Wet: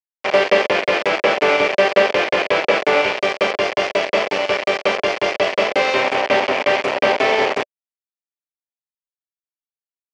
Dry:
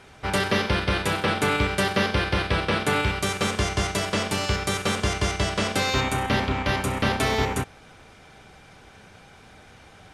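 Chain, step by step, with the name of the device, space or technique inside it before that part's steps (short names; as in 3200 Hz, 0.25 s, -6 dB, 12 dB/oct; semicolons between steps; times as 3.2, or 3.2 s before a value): hand-held game console (bit-crush 4-bit; speaker cabinet 400–4200 Hz, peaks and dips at 410 Hz +4 dB, 590 Hz +10 dB, 1400 Hz -5 dB, 2300 Hz +3 dB, 3800 Hz -9 dB); gain +6.5 dB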